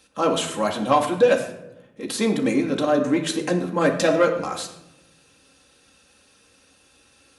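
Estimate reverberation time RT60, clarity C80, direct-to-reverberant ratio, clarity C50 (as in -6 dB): 0.90 s, 11.5 dB, 1.0 dB, 8.5 dB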